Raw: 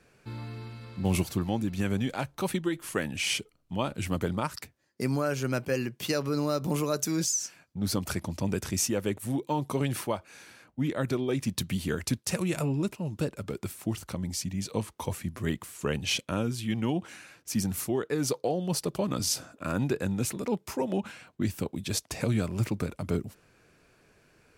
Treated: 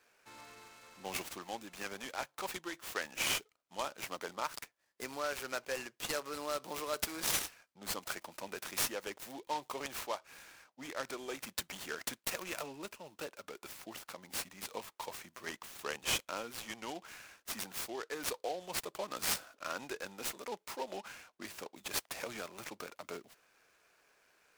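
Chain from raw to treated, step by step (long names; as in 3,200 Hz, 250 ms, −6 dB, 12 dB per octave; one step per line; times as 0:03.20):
high-pass filter 690 Hz 12 dB per octave
short delay modulated by noise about 3,400 Hz, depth 0.042 ms
level −3.5 dB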